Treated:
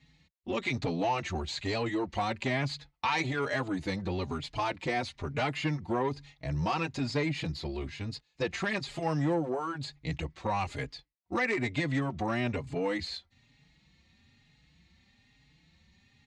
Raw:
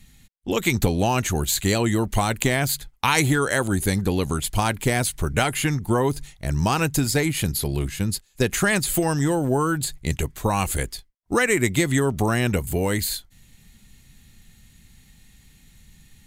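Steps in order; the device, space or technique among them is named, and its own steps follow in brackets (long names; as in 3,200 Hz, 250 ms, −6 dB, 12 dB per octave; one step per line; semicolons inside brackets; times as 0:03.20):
barber-pole flanger into a guitar amplifier (barber-pole flanger 4.3 ms +1.1 Hz; soft clipping −18 dBFS, distortion −15 dB; loudspeaker in its box 96–4,600 Hz, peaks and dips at 110 Hz −7 dB, 200 Hz −8 dB, 400 Hz −5 dB, 1,500 Hz −6 dB, 3,200 Hz −5 dB)
level −1.5 dB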